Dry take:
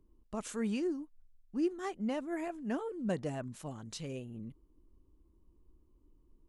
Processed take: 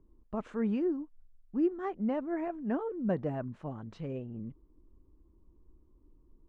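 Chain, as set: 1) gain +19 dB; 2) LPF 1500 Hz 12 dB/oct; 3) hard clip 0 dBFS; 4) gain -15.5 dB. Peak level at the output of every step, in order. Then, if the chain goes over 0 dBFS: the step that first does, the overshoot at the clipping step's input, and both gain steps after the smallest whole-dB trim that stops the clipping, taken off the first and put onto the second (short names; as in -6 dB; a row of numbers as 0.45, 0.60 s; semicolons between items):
-4.0, -4.5, -4.5, -20.0 dBFS; no overload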